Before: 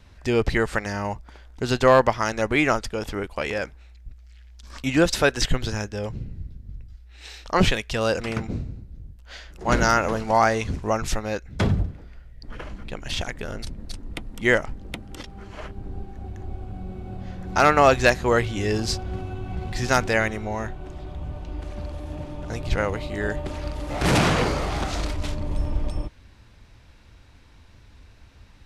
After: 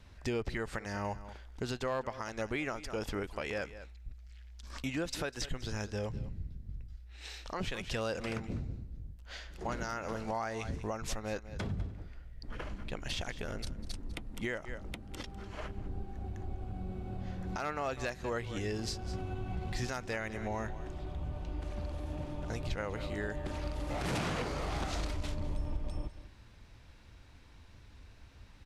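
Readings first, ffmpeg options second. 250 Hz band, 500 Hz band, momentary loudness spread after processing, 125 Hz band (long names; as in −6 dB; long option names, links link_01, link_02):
−13.0 dB, −15.0 dB, 15 LU, −11.0 dB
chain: -filter_complex "[0:a]asplit=2[link_01][link_02];[link_02]aecho=0:1:199:0.133[link_03];[link_01][link_03]amix=inputs=2:normalize=0,acompressor=threshold=-28dB:ratio=2.5,alimiter=limit=-20dB:level=0:latency=1:release=276,volume=-5dB"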